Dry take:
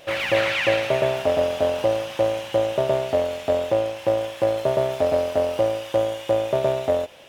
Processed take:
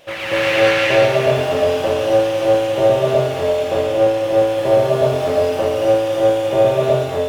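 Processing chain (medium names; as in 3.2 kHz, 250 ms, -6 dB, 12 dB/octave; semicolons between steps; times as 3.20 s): gated-style reverb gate 320 ms rising, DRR -7 dB; trim -1.5 dB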